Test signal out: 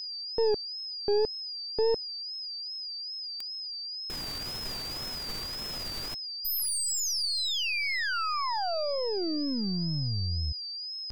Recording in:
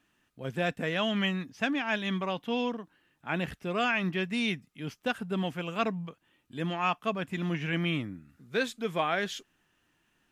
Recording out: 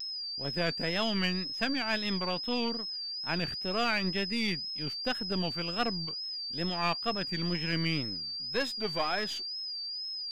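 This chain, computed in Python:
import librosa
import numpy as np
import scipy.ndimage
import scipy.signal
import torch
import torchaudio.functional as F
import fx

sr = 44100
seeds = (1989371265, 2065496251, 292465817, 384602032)

y = np.where(x < 0.0, 10.0 ** (-7.0 / 20.0) * x, x)
y = y + 10.0 ** (-35.0 / 20.0) * np.sin(2.0 * np.pi * 4900.0 * np.arange(len(y)) / sr)
y = fx.wow_flutter(y, sr, seeds[0], rate_hz=2.1, depth_cents=92.0)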